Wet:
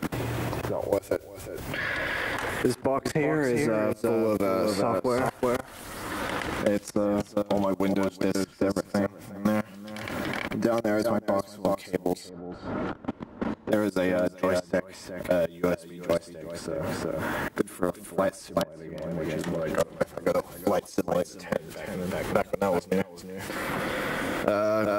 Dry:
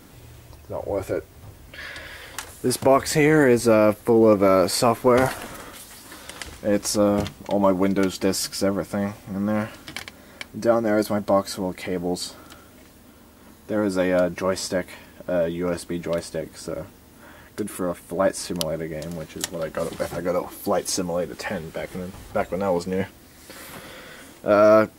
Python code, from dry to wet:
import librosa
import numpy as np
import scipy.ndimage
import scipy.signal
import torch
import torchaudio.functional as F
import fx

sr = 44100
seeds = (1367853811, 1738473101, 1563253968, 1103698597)

y = fx.echo_multitap(x, sr, ms=(111, 370), db=(-19.5, -6.5))
y = fx.level_steps(y, sr, step_db=24)
y = fx.lowpass(y, sr, hz=1200.0, slope=12, at=(12.29, 13.72))
y = fx.band_squash(y, sr, depth_pct=100)